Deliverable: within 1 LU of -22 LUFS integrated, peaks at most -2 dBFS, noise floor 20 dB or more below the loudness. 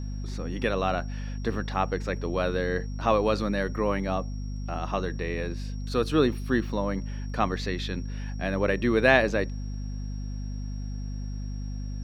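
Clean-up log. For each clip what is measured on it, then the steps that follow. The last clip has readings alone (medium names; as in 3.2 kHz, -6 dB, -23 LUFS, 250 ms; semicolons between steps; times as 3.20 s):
hum 50 Hz; highest harmonic 250 Hz; hum level -31 dBFS; steady tone 5.6 kHz; tone level -53 dBFS; loudness -28.5 LUFS; peak level -4.5 dBFS; loudness target -22.0 LUFS
-> hum notches 50/100/150/200/250 Hz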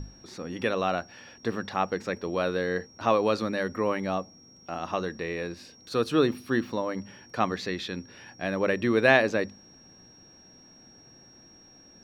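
hum not found; steady tone 5.6 kHz; tone level -53 dBFS
-> band-stop 5.6 kHz, Q 30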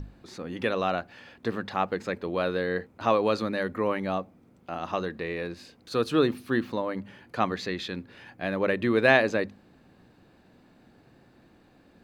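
steady tone not found; loudness -28.5 LUFS; peak level -4.5 dBFS; loudness target -22.0 LUFS
-> trim +6.5 dB; peak limiter -2 dBFS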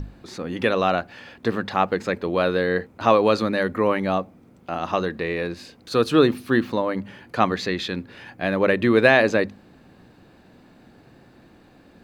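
loudness -22.0 LUFS; peak level -2.0 dBFS; noise floor -53 dBFS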